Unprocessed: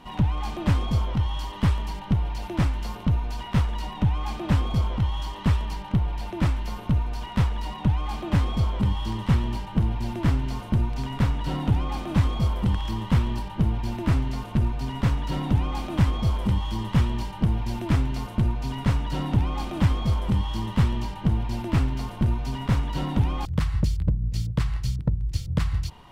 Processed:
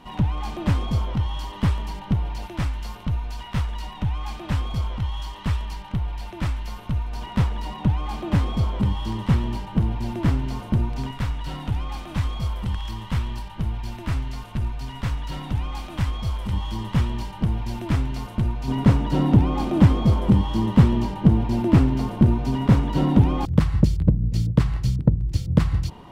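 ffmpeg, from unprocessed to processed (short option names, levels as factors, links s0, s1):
-af "asetnsamples=n=441:p=0,asendcmd='2.46 equalizer g -5.5;7.13 equalizer g 2.5;11.11 equalizer g -7.5;16.53 equalizer g -0.5;18.68 equalizer g 10.5',equalizer=f=290:t=o:w=2.9:g=1"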